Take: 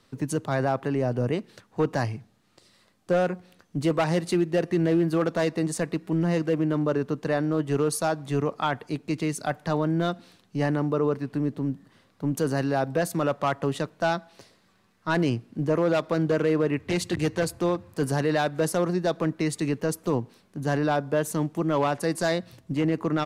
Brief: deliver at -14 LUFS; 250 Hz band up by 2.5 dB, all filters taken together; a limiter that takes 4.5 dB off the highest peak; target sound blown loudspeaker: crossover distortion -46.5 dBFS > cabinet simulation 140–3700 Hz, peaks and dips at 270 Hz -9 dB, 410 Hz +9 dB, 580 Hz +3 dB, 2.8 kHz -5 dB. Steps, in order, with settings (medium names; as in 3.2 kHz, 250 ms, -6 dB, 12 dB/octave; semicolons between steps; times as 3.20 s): peaking EQ 250 Hz +7 dB; peak limiter -14.5 dBFS; crossover distortion -46.5 dBFS; cabinet simulation 140–3700 Hz, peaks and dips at 270 Hz -9 dB, 410 Hz +9 dB, 580 Hz +3 dB, 2.8 kHz -5 dB; trim +11 dB